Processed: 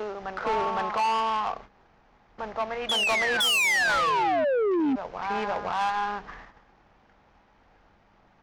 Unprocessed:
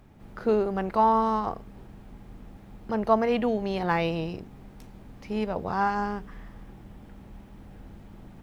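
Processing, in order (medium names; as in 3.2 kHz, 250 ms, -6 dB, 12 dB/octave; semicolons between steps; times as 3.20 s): CVSD coder 32 kbps; three-band isolator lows -17 dB, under 580 Hz, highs -12 dB, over 2.4 kHz; painted sound fall, 3.40–4.96 s, 250–3500 Hz -25 dBFS; in parallel at +2.5 dB: compression 6:1, threshold -39 dBFS, peak gain reduction 18.5 dB; on the sum: dynamic bell 2.6 kHz, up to +5 dB, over -40 dBFS, Q 1.2; on a send: reverse echo 512 ms -7 dB; on the sum: saturation -25.5 dBFS, distortion -8 dB; gate -46 dBFS, range -13 dB; trim +4 dB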